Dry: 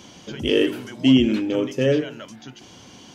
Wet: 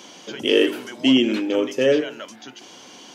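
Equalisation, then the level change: HPF 320 Hz 12 dB/oct; +3.5 dB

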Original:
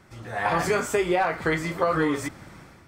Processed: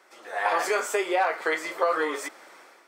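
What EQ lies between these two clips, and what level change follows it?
HPF 410 Hz 24 dB/oct; 0.0 dB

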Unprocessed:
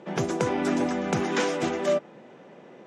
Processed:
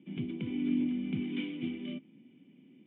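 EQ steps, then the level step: vocal tract filter i; low shelf 63 Hz -7 dB; bell 530 Hz -14.5 dB 1.6 oct; +5.5 dB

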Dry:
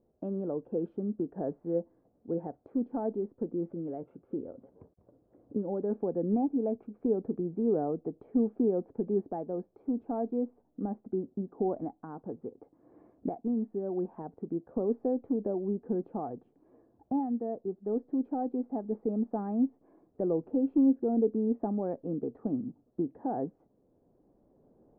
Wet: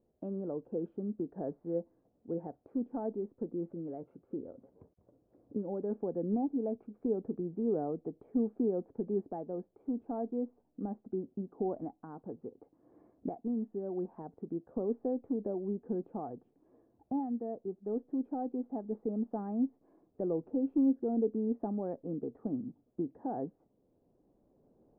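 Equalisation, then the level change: air absorption 180 m; -3.5 dB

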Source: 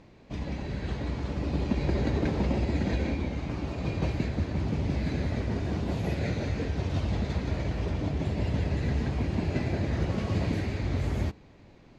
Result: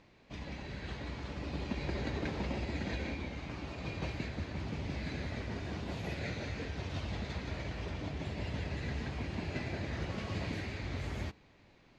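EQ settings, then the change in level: LPF 3700 Hz 6 dB/oct; tilt shelf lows -6 dB, about 1100 Hz; -4.5 dB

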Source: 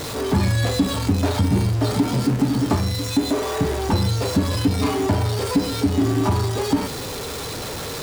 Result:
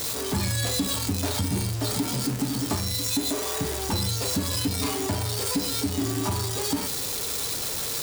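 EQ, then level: pre-emphasis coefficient 0.8; bell 13000 Hz -2.5 dB 0.45 oct; +5.5 dB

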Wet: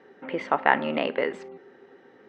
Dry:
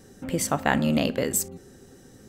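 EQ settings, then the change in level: speaker cabinet 370–3000 Hz, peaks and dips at 410 Hz +5 dB, 910 Hz +7 dB, 1300 Hz +3 dB, 2000 Hz +6 dB; 0.0 dB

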